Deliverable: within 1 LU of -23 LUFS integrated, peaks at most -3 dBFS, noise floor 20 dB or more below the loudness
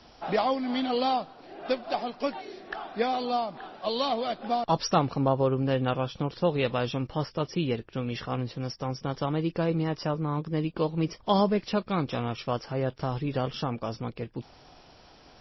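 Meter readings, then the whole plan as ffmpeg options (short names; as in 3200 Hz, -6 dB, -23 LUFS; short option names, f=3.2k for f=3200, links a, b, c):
loudness -29.5 LUFS; peak -11.0 dBFS; loudness target -23.0 LUFS
-> -af "volume=6.5dB"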